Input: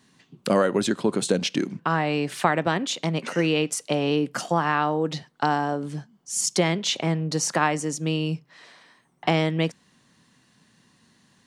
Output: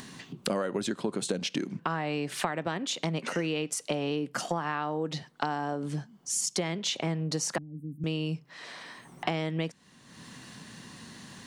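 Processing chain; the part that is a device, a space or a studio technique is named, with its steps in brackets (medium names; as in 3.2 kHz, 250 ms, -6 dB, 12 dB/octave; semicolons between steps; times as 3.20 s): upward and downward compression (upward compressor, threshold -39 dBFS; compression 4:1, threshold -32 dBFS, peak gain reduction 15 dB); 7.58–8.04 s: inverse Chebyshev band-stop 1–6.3 kHz, stop band 70 dB; trim +3 dB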